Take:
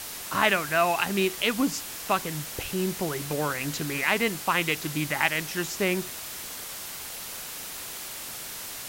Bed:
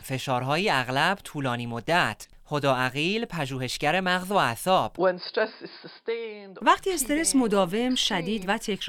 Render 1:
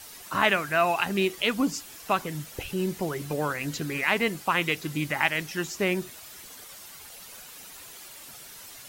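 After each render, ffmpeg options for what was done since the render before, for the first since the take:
-af "afftdn=nr=10:nf=-38"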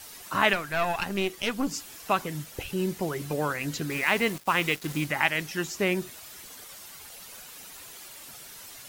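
-filter_complex "[0:a]asettb=1/sr,asplit=3[s0][s1][s2];[s0]atrim=end=0.534[s3];[s1]atrim=start=0.53:end=1.71,asetpts=PTS-STARTPTS,afade=t=in:d=0.004:c=qsin,afade=t=out:st=1.176:d=0.004:c=qsin,aeval=exprs='(tanh(7.94*val(0)+0.65)-tanh(0.65))/7.94':c=same[s4];[s2]atrim=start=1.706[s5];[s3][s4]acrossfade=d=0.004:c1=hsin:c2=qsin[s6];[s6][s5]acrossfade=d=0.004:c1=qsin:c2=hsin,asettb=1/sr,asplit=3[s7][s8][s9];[s7]atrim=end=2.284[s10];[s8]atrim=start=2.28:end=3.14,asetpts=PTS-STARTPTS,afade=t=in:d=0.004:c=qsin,afade=t=out:st=0.856:d=0.004:c=qsin,aeval=exprs='sgn(val(0))*max(abs(val(0))-0.00106,0)':c=same[s11];[s9]atrim=start=3.136[s12];[s10][s11]acrossfade=d=0.004:c1=hsin:c2=qsin[s13];[s13][s12]acrossfade=d=0.004:c1=qsin:c2=hsin,asettb=1/sr,asplit=3[s14][s15][s16];[s14]atrim=end=3.904[s17];[s15]atrim=start=3.9:end=5.06,asetpts=PTS-STARTPTS,afade=t=in:d=0.004:c=qsin,afade=t=out:st=1.156:d=0.004:c=qsin,acrusher=bits=5:mix=0:aa=0.5[s18];[s16]atrim=start=5.056[s19];[s17][s18]acrossfade=d=0.004:c1=hsin:c2=qsin[s20];[s20][s19]acrossfade=d=0.004:c1=qsin:c2=hsin"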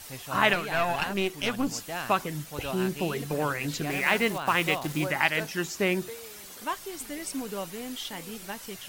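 -filter_complex "[1:a]volume=0.237[s0];[0:a][s0]amix=inputs=2:normalize=0"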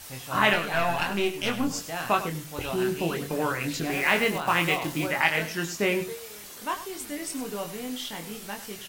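-filter_complex "[0:a]asplit=2[s0][s1];[s1]adelay=24,volume=0.562[s2];[s0][s2]amix=inputs=2:normalize=0,aecho=1:1:99:0.224"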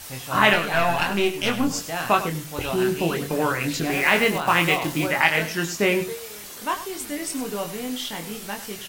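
-af "volume=1.68,alimiter=limit=0.708:level=0:latency=1"

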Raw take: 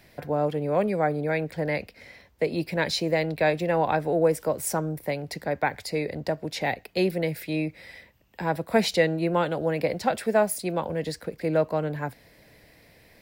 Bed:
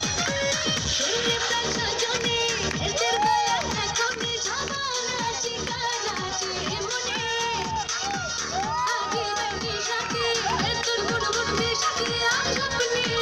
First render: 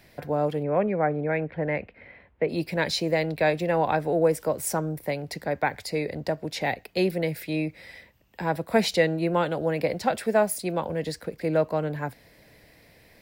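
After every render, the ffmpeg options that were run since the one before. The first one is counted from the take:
-filter_complex "[0:a]asplit=3[s0][s1][s2];[s0]afade=t=out:st=0.62:d=0.02[s3];[s1]lowpass=f=2600:w=0.5412,lowpass=f=2600:w=1.3066,afade=t=in:st=0.62:d=0.02,afade=t=out:st=2.48:d=0.02[s4];[s2]afade=t=in:st=2.48:d=0.02[s5];[s3][s4][s5]amix=inputs=3:normalize=0"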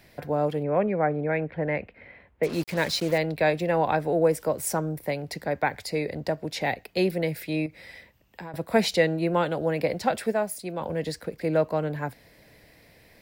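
-filter_complex "[0:a]asettb=1/sr,asplit=3[s0][s1][s2];[s0]atrim=end=2.434[s3];[s1]atrim=start=2.43:end=3.18,asetpts=PTS-STARTPTS,afade=t=in:d=0.004:c=qsin,afade=t=out:st=0.746:d=0.004:c=qsin,acrusher=bits=5:mix=0:aa=0.5[s4];[s2]atrim=start=3.176[s5];[s3][s4]acrossfade=d=0.004:c1=hsin:c2=qsin[s6];[s6][s5]acrossfade=d=0.004:c1=qsin:c2=hsin,asettb=1/sr,asplit=3[s7][s8][s9];[s7]atrim=end=7.664[s10];[s8]atrim=start=7.66:end=8.54,asetpts=PTS-STARTPTS,afade=t=in:d=0.004:c=qsin,afade=t=out:st=0.876:d=0.004:c=qsin,acompressor=threshold=0.0178:ratio=6:attack=3.2:release=140:knee=1:detection=peak[s11];[s9]atrim=start=8.536[s12];[s10][s11]acrossfade=d=0.004:c1=hsin:c2=qsin[s13];[s13][s12]acrossfade=d=0.004:c1=qsin:c2=hsin,asplit=3[s14][s15][s16];[s14]atrim=end=10.322[s17];[s15]atrim=start=10.318:end=10.812,asetpts=PTS-STARTPTS,volume=0.562[s18];[s16]atrim=start=10.808[s19];[s17][s18]acrossfade=d=0.004:c1=hsin:c2=hsin[s20];[s20][s19]acrossfade=d=0.004:c1=hsin:c2=hsin"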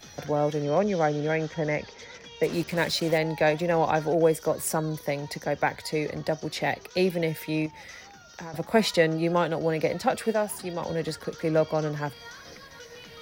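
-filter_complex "[1:a]volume=0.0841[s0];[0:a][s0]amix=inputs=2:normalize=0"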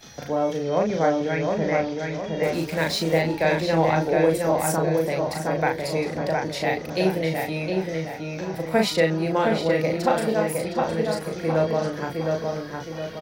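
-filter_complex "[0:a]asplit=2[s0][s1];[s1]adelay=37,volume=0.668[s2];[s0][s2]amix=inputs=2:normalize=0,asplit=2[s3][s4];[s4]adelay=713,lowpass=f=2700:p=1,volume=0.708,asplit=2[s5][s6];[s6]adelay=713,lowpass=f=2700:p=1,volume=0.46,asplit=2[s7][s8];[s8]adelay=713,lowpass=f=2700:p=1,volume=0.46,asplit=2[s9][s10];[s10]adelay=713,lowpass=f=2700:p=1,volume=0.46,asplit=2[s11][s12];[s12]adelay=713,lowpass=f=2700:p=1,volume=0.46,asplit=2[s13][s14];[s14]adelay=713,lowpass=f=2700:p=1,volume=0.46[s15];[s5][s7][s9][s11][s13][s15]amix=inputs=6:normalize=0[s16];[s3][s16]amix=inputs=2:normalize=0"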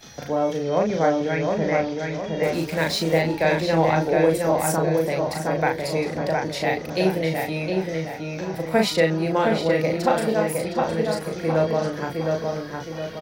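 -af "volume=1.12"

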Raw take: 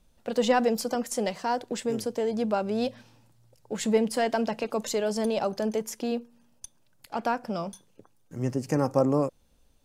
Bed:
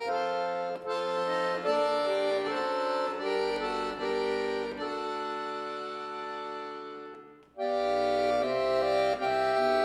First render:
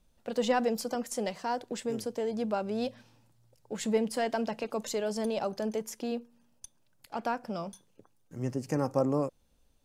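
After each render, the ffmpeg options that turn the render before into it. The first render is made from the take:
-af "volume=0.596"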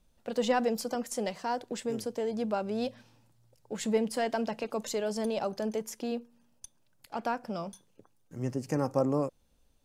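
-af anull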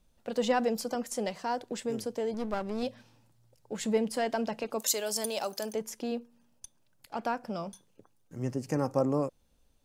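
-filter_complex "[0:a]asettb=1/sr,asplit=3[s0][s1][s2];[s0]atrim=end=2.344[s3];[s1]atrim=start=2.34:end=2.83,asetpts=PTS-STARTPTS,afade=t=in:d=0.004:c=qsin,afade=t=out:st=0.486:d=0.004:c=qsin,aeval=exprs='clip(val(0),-1,0.00944)':c=same[s4];[s2]atrim=start=2.826[s5];[s3][s4]acrossfade=d=0.004:c1=hsin:c2=qsin[s6];[s6][s5]acrossfade=d=0.004:c1=qsin:c2=hsin,asplit=3[s7][s8][s9];[s7]afade=t=out:st=4.78:d=0.02[s10];[s8]aemphasis=mode=production:type=riaa,afade=t=in:st=4.78:d=0.02,afade=t=out:st=5.72:d=0.02[s11];[s9]afade=t=in:st=5.72:d=0.02[s12];[s10][s11][s12]amix=inputs=3:normalize=0"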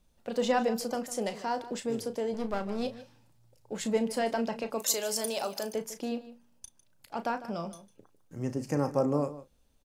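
-filter_complex "[0:a]asplit=2[s0][s1];[s1]adelay=35,volume=0.282[s2];[s0][s2]amix=inputs=2:normalize=0,asplit=2[s3][s4];[s4]adelay=151.6,volume=0.178,highshelf=f=4000:g=-3.41[s5];[s3][s5]amix=inputs=2:normalize=0"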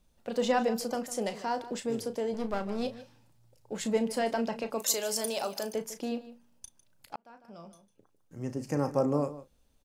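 -filter_complex "[0:a]asplit=2[s0][s1];[s0]atrim=end=7.16,asetpts=PTS-STARTPTS,afade=t=out:st=7.156:d=0.004:c=hsin[s2];[s1]atrim=start=7.16,asetpts=PTS-STARTPTS,afade=t=in:d=1.77[s3];[s2][s3]concat=n=2:v=0:a=1"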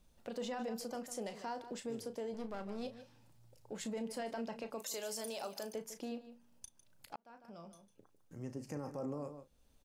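-af "alimiter=limit=0.075:level=0:latency=1:release=14,acompressor=threshold=0.00158:ratio=1.5"

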